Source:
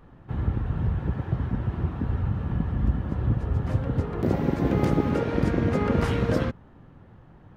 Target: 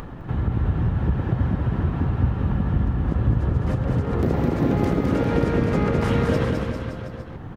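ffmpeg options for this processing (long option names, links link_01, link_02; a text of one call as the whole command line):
ffmpeg -i in.wav -filter_complex "[0:a]acompressor=threshold=-24dB:ratio=6,asplit=2[link_01][link_02];[link_02]aecho=0:1:210|399|569.1|722.2|860:0.631|0.398|0.251|0.158|0.1[link_03];[link_01][link_03]amix=inputs=2:normalize=0,acompressor=mode=upward:threshold=-32dB:ratio=2.5,volume=5.5dB" out.wav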